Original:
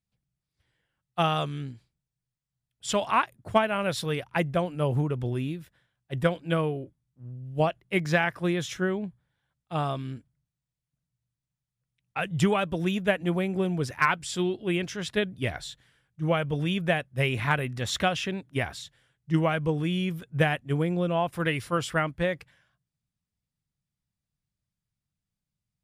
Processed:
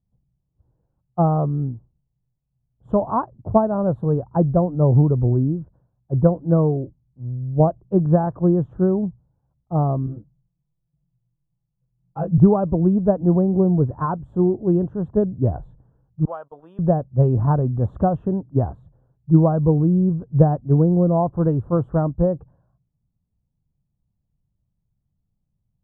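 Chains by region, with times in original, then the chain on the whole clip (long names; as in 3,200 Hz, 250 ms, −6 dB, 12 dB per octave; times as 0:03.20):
0:10.06–0:12.38: chorus effect 1.3 Hz, delay 18 ms, depth 6 ms + comb filter 6 ms, depth 81%
0:16.25–0:16.79: high-pass filter 840 Hz + noise gate −49 dBFS, range −23 dB + tilt shelving filter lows −8.5 dB, about 1,300 Hz
whole clip: inverse Chebyshev low-pass filter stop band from 2,000 Hz, stop band 40 dB; spectral tilt −2.5 dB per octave; level +5 dB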